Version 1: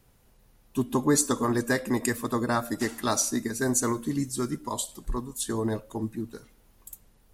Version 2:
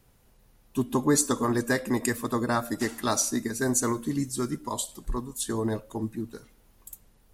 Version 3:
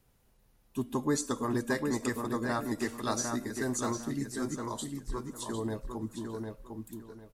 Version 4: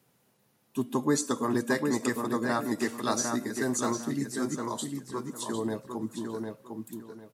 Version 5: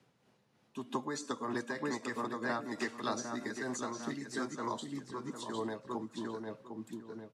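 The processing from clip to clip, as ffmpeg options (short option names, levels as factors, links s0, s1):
-af anull
-filter_complex "[0:a]acrossover=split=7600[s0][s1];[s1]acompressor=threshold=0.00891:ratio=4:attack=1:release=60[s2];[s0][s2]amix=inputs=2:normalize=0,asplit=2[s3][s4];[s4]adelay=753,lowpass=f=4100:p=1,volume=0.596,asplit=2[s5][s6];[s6]adelay=753,lowpass=f=4100:p=1,volume=0.26,asplit=2[s7][s8];[s8]adelay=753,lowpass=f=4100:p=1,volume=0.26,asplit=2[s9][s10];[s10]adelay=753,lowpass=f=4100:p=1,volume=0.26[s11];[s5][s7][s9][s11]amix=inputs=4:normalize=0[s12];[s3][s12]amix=inputs=2:normalize=0,volume=0.473"
-af "highpass=f=130:w=0.5412,highpass=f=130:w=1.3066,volume=1.5"
-filter_complex "[0:a]acrossover=split=190|580[s0][s1][s2];[s0]acompressor=threshold=0.00282:ratio=4[s3];[s1]acompressor=threshold=0.01:ratio=4[s4];[s2]acompressor=threshold=0.0178:ratio=4[s5];[s3][s4][s5]amix=inputs=3:normalize=0,tremolo=f=3.2:d=0.44,lowpass=5100,volume=1.12"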